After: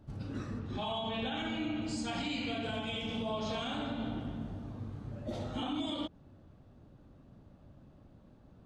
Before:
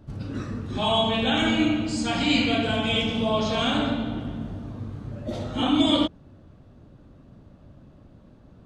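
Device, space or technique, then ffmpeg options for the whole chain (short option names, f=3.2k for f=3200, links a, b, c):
stacked limiters: -filter_complex "[0:a]asettb=1/sr,asplit=3[a][b][c];[a]atrim=end=0.594[d];[b]atrim=start=0.59:end=1.82,asetpts=PTS-STARTPTS,afade=t=in:d=0.004:c=qsin,afade=t=out:st=1.226:d=0.004:c=qsin,lowpass=5.6k[e];[c]atrim=start=1.816[f];[d][e]acrossfade=d=0.004:c1=hsin:c2=qsin[g];[g][f]acrossfade=d=0.004:c1=qsin:c2=hsin,equalizer=f=810:w=5.5:g=3.5,alimiter=limit=-14dB:level=0:latency=1:release=164,alimiter=limit=-20dB:level=0:latency=1:release=131,volume=-7.5dB"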